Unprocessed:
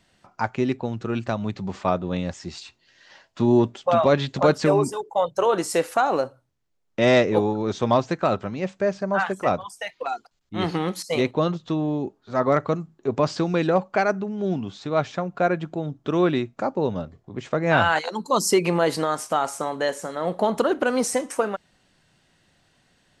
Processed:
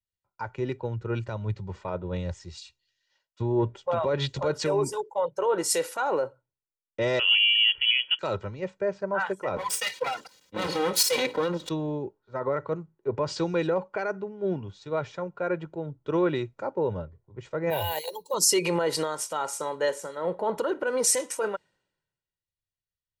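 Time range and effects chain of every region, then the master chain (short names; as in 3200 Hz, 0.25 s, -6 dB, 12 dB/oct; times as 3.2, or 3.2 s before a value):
7.19–8.19 HPF 41 Hz + inverted band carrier 3200 Hz
9.56–11.69 minimum comb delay 3.9 ms + HPF 130 Hz + fast leveller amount 50%
17.7–18.34 careless resampling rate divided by 3×, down none, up hold + fixed phaser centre 560 Hz, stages 4
whole clip: comb 2.1 ms, depth 59%; limiter -15.5 dBFS; three-band expander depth 100%; gain -3 dB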